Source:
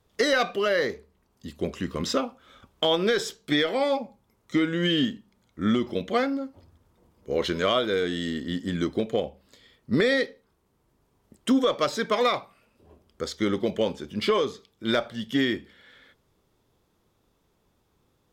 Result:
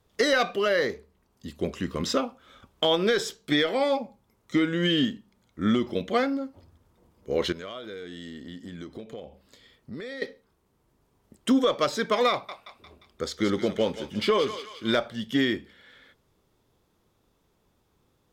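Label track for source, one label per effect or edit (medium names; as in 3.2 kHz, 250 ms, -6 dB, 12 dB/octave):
7.520000	10.220000	compression 3:1, threshold -40 dBFS
12.310000	15.000000	thinning echo 176 ms, feedback 59%, high-pass 980 Hz, level -8 dB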